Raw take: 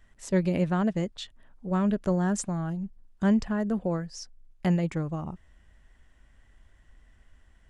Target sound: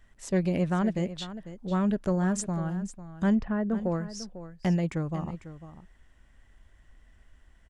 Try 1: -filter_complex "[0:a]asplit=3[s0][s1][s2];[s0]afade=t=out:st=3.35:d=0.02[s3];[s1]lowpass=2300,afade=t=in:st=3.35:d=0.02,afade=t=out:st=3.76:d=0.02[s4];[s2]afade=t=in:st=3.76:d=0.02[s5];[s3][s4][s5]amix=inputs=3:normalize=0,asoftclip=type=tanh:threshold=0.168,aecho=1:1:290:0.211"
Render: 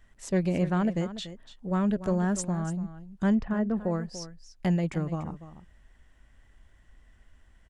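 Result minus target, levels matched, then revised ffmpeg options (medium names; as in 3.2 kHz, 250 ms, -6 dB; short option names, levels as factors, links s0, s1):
echo 208 ms early
-filter_complex "[0:a]asplit=3[s0][s1][s2];[s0]afade=t=out:st=3.35:d=0.02[s3];[s1]lowpass=2300,afade=t=in:st=3.35:d=0.02,afade=t=out:st=3.76:d=0.02[s4];[s2]afade=t=in:st=3.76:d=0.02[s5];[s3][s4][s5]amix=inputs=3:normalize=0,asoftclip=type=tanh:threshold=0.168,aecho=1:1:498:0.211"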